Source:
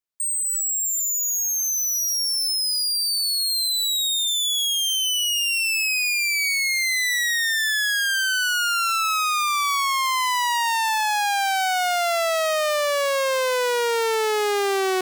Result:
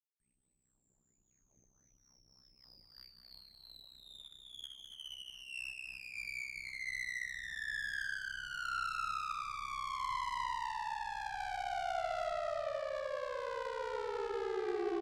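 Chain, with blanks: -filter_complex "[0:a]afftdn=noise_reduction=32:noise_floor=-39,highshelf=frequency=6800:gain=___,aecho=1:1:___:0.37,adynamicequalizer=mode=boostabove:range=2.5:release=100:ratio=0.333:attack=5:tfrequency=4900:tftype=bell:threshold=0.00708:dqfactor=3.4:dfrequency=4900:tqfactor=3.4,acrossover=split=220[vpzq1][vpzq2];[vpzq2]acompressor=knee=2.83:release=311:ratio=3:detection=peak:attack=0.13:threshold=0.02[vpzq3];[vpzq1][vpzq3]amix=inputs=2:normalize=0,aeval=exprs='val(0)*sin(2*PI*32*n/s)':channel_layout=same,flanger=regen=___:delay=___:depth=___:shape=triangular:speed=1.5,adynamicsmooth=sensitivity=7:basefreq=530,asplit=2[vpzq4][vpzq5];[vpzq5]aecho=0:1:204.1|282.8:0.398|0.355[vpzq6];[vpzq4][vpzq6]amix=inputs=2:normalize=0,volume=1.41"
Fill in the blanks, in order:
-11.5, 3, -23, 3.9, 8.2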